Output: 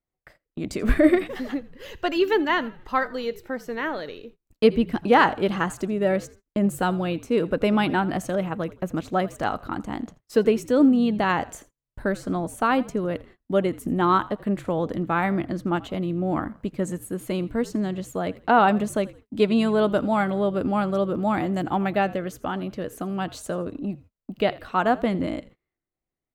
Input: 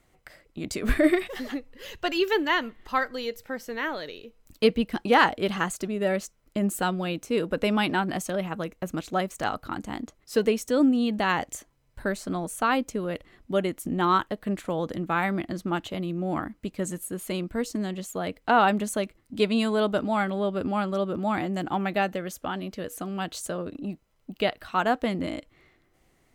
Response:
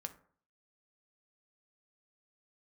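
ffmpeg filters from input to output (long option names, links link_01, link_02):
-filter_complex "[0:a]asettb=1/sr,asplit=3[link_01][link_02][link_03];[link_01]atrim=end=19.844[link_04];[link_02]atrim=start=19.84:end=21.92,asetpts=PTS-STARTPTS,afade=type=in:duration=0.004:curve=qsin,afade=type=out:start_time=2.076:duration=0.004:curve=qsin,highshelf=frequency=7000:gain=7[link_05];[link_03]atrim=start=21.916[link_06];[link_04][link_05]acrossfade=duration=0.004:curve1=hsin:curve2=qsin[link_07];[link_07][link_06]acrossfade=duration=0.004:curve1=qsin:curve2=hsin,asplit=4[link_08][link_09][link_10][link_11];[link_09]adelay=83,afreqshift=-57,volume=-20dB[link_12];[link_10]adelay=166,afreqshift=-114,volume=-29.1dB[link_13];[link_11]adelay=249,afreqshift=-171,volume=-38.2dB[link_14];[link_08][link_12][link_13][link_14]amix=inputs=4:normalize=0,agate=range=-28dB:threshold=-48dB:ratio=16:detection=peak,highshelf=frequency=2100:gain=-8.5,volume=4dB"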